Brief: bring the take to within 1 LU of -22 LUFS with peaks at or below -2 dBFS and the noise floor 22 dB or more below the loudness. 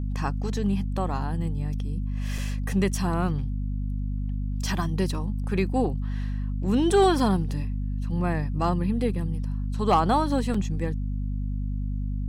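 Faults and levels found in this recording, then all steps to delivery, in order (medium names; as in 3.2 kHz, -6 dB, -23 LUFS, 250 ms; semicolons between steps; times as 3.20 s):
dropouts 2; longest dropout 4.2 ms; hum 50 Hz; highest harmonic 250 Hz; hum level -26 dBFS; loudness -27.0 LUFS; peak level -10.5 dBFS; loudness target -22.0 LUFS
-> interpolate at 2.38/10.54 s, 4.2 ms; de-hum 50 Hz, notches 5; trim +5 dB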